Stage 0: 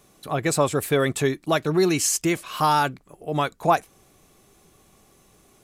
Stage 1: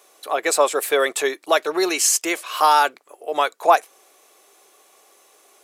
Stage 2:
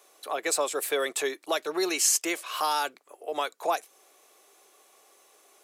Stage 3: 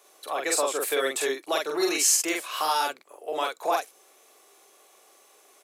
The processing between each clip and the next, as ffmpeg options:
ffmpeg -i in.wav -af "highpass=frequency=430:width=0.5412,highpass=frequency=430:width=1.3066,volume=5dB" out.wav
ffmpeg -i in.wav -filter_complex "[0:a]acrossover=split=320|3000[link_01][link_02][link_03];[link_02]acompressor=threshold=-26dB:ratio=2[link_04];[link_01][link_04][link_03]amix=inputs=3:normalize=0,volume=-5dB" out.wav
ffmpeg -i in.wav -filter_complex "[0:a]asplit=2[link_01][link_02];[link_02]adelay=45,volume=-2dB[link_03];[link_01][link_03]amix=inputs=2:normalize=0" out.wav

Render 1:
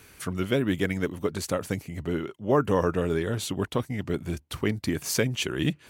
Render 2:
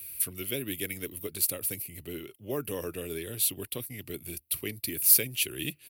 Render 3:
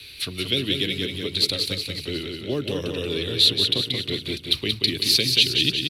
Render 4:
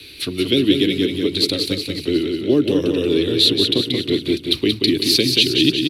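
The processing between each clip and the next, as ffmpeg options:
ffmpeg -i in.wav -filter_complex "[0:a]firequalizer=gain_entry='entry(120,0);entry(180,-9);entry(340,-3);entry(920,-13);entry(1500,-9);entry(2600,8);entry(3800,-2);entry(6500,-18);entry(11000,3)':delay=0.05:min_phase=1,acrossover=split=150|3300[link_01][link_02][link_03];[link_01]acompressor=threshold=-44dB:ratio=6[link_04];[link_04][link_02][link_03]amix=inputs=3:normalize=0,aexciter=amount=8.9:drive=3.7:freq=4400,volume=-5.5dB" out.wav
ffmpeg -i in.wav -filter_complex "[0:a]acrossover=split=440|3000[link_01][link_02][link_03];[link_02]acompressor=threshold=-46dB:ratio=6[link_04];[link_01][link_04][link_03]amix=inputs=3:normalize=0,lowpass=frequency=3900:width_type=q:width=6.7,asplit=2[link_05][link_06];[link_06]aecho=0:1:181|362|543|724|905|1086|1267:0.562|0.315|0.176|0.0988|0.0553|0.031|0.0173[link_07];[link_05][link_07]amix=inputs=2:normalize=0,volume=9dB" out.wav
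ffmpeg -i in.wav -af "equalizer=frequency=310:width=1.4:gain=13,volume=2dB" out.wav

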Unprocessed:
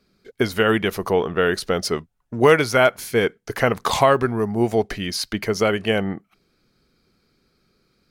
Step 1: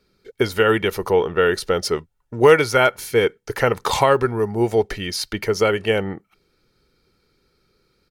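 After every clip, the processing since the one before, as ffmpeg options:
ffmpeg -i in.wav -af "aecho=1:1:2.2:0.4" out.wav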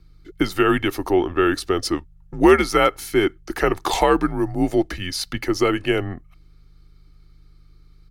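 ffmpeg -i in.wav -af "aeval=exprs='val(0)+0.00501*(sin(2*PI*50*n/s)+sin(2*PI*2*50*n/s)/2+sin(2*PI*3*50*n/s)/3+sin(2*PI*4*50*n/s)/4+sin(2*PI*5*50*n/s)/5)':channel_layout=same,afreqshift=-85,volume=-1dB" out.wav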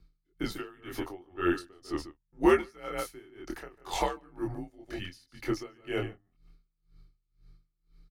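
ffmpeg -i in.wav -filter_complex "[0:a]flanger=delay=22.5:depth=4.1:speed=0.76,asplit=2[link_01][link_02];[link_02]adelay=145.8,volume=-10dB,highshelf=frequency=4000:gain=-3.28[link_03];[link_01][link_03]amix=inputs=2:normalize=0,aeval=exprs='val(0)*pow(10,-28*(0.5-0.5*cos(2*PI*2*n/s))/20)':channel_layout=same,volume=-5dB" out.wav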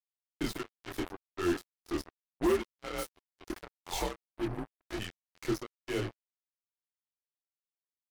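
ffmpeg -i in.wav -filter_complex "[0:a]acrossover=split=460|3000[link_01][link_02][link_03];[link_02]acompressor=threshold=-43dB:ratio=2[link_04];[link_01][link_04][link_03]amix=inputs=3:normalize=0,acrusher=bits=5:mix=0:aa=0.5,asoftclip=type=hard:threshold=-22.5dB" out.wav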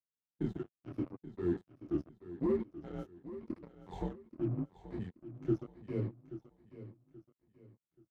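ffmpeg -i in.wav -af "afftfilt=real='re*pow(10,7/40*sin(2*PI*(0.95*log(max(b,1)*sr/1024/100)/log(2)-(-0.84)*(pts-256)/sr)))':imag='im*pow(10,7/40*sin(2*PI*(0.95*log(max(b,1)*sr/1024/100)/log(2)-(-0.84)*(pts-256)/sr)))':win_size=1024:overlap=0.75,bandpass=frequency=160:width_type=q:width=1.3:csg=0,aecho=1:1:830|1660|2490:0.2|0.0638|0.0204,volume=5dB" out.wav

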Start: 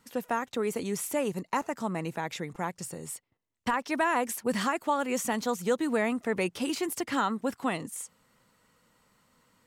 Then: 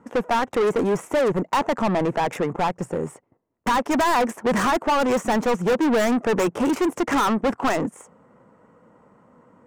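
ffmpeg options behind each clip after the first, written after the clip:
ffmpeg -i in.wav -filter_complex "[0:a]adynamicsmooth=sensitivity=3:basefreq=580,aexciter=amount=8.6:drive=8.4:freq=6300,asplit=2[link_01][link_02];[link_02]highpass=frequency=720:poles=1,volume=33dB,asoftclip=type=tanh:threshold=-12dB[link_03];[link_01][link_03]amix=inputs=2:normalize=0,lowpass=frequency=2200:poles=1,volume=-6dB" out.wav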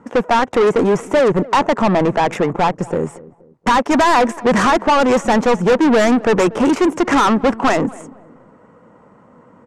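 ffmpeg -i in.wav -filter_complex "[0:a]lowpass=7900,asplit=2[link_01][link_02];[link_02]adelay=237,lowpass=frequency=910:poles=1,volume=-19dB,asplit=2[link_03][link_04];[link_04]adelay=237,lowpass=frequency=910:poles=1,volume=0.4,asplit=2[link_05][link_06];[link_06]adelay=237,lowpass=frequency=910:poles=1,volume=0.4[link_07];[link_01][link_03][link_05][link_07]amix=inputs=4:normalize=0,volume=7dB" out.wav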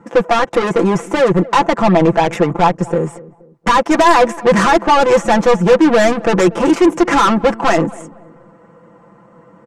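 ffmpeg -i in.wav -af "aecho=1:1:5.9:0.8" out.wav

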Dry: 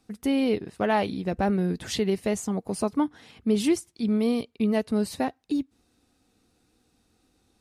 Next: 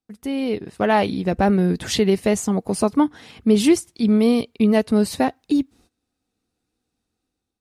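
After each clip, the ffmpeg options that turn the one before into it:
ffmpeg -i in.wav -af "agate=range=-20dB:threshold=-58dB:ratio=16:detection=peak,dynaudnorm=framelen=270:gausssize=5:maxgain=11.5dB,volume=-2dB" out.wav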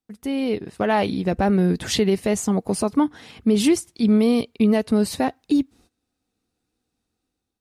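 ffmpeg -i in.wav -af "alimiter=limit=-9dB:level=0:latency=1:release=88" out.wav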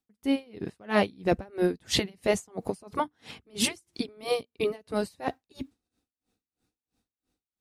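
ffmpeg -i in.wav -af "afftfilt=real='re*lt(hypot(re,im),0.891)':imag='im*lt(hypot(re,im),0.891)':win_size=1024:overlap=0.75,aeval=exprs='val(0)*pow(10,-31*(0.5-0.5*cos(2*PI*3*n/s))/20)':channel_layout=same,volume=2dB" out.wav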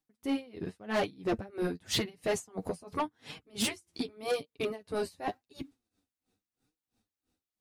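ffmpeg -i in.wav -af "flanger=delay=6.1:depth=6.6:regen=23:speed=0.89:shape=triangular,asoftclip=type=tanh:threshold=-26.5dB,volume=2.5dB" out.wav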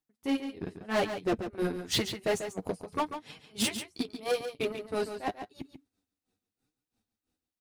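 ffmpeg -i in.wav -filter_complex "[0:a]asplit=2[link_01][link_02];[link_02]acrusher=bits=4:mix=0:aa=0.5,volume=-4dB[link_03];[link_01][link_03]amix=inputs=2:normalize=0,aecho=1:1:141:0.355,volume=-3dB" out.wav

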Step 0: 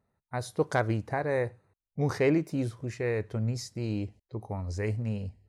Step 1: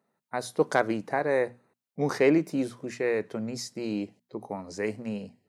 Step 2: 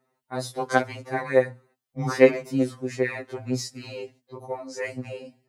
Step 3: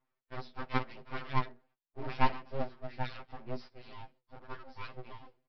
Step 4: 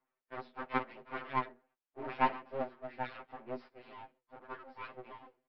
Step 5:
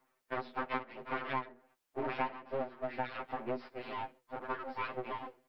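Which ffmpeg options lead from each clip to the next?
ffmpeg -i in.wav -af "highpass=frequency=180:width=0.5412,highpass=frequency=180:width=1.3066,bandreject=frequency=60:width_type=h:width=6,bandreject=frequency=120:width_type=h:width=6,bandreject=frequency=180:width_type=h:width=6,bandreject=frequency=240:width_type=h:width=6,volume=3.5dB" out.wav
ffmpeg -i in.wav -af "aphaser=in_gain=1:out_gain=1:delay=3.9:decay=0.29:speed=2:type=sinusoidal,afftfilt=real='re*2.45*eq(mod(b,6),0)':imag='im*2.45*eq(mod(b,6),0)':win_size=2048:overlap=0.75,volume=5dB" out.wav
ffmpeg -i in.wav -af "highshelf=frequency=2900:gain=-9.5,aresample=11025,aeval=exprs='abs(val(0))':channel_layout=same,aresample=44100,volume=-8.5dB" out.wav
ffmpeg -i in.wav -filter_complex "[0:a]acrossover=split=210 3000:gain=0.141 1 0.1[link_01][link_02][link_03];[link_01][link_02][link_03]amix=inputs=3:normalize=0,volume=1dB" out.wav
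ffmpeg -i in.wav -af "acompressor=threshold=-44dB:ratio=8,volume=11dB" out.wav

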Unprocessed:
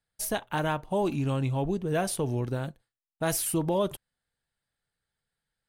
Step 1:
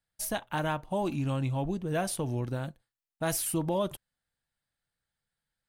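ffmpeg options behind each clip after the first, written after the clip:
ffmpeg -i in.wav -af "equalizer=frequency=420:width_type=o:width=0.2:gain=-8,volume=-2dB" out.wav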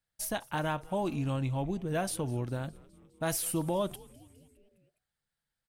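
ffmpeg -i in.wav -filter_complex "[0:a]asplit=6[link_01][link_02][link_03][link_04][link_05][link_06];[link_02]adelay=205,afreqshift=-150,volume=-22dB[link_07];[link_03]adelay=410,afreqshift=-300,volume=-26.2dB[link_08];[link_04]adelay=615,afreqshift=-450,volume=-30.3dB[link_09];[link_05]adelay=820,afreqshift=-600,volume=-34.5dB[link_10];[link_06]adelay=1025,afreqshift=-750,volume=-38.6dB[link_11];[link_01][link_07][link_08][link_09][link_10][link_11]amix=inputs=6:normalize=0,volume=-1.5dB" out.wav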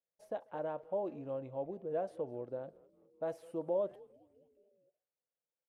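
ffmpeg -i in.wav -filter_complex "[0:a]bandpass=frequency=520:width_type=q:width=3.4:csg=0,asplit=2[link_01][link_02];[link_02]adelay=140,highpass=300,lowpass=3400,asoftclip=type=hard:threshold=-36dB,volume=-28dB[link_03];[link_01][link_03]amix=inputs=2:normalize=0,volume=2dB" out.wav

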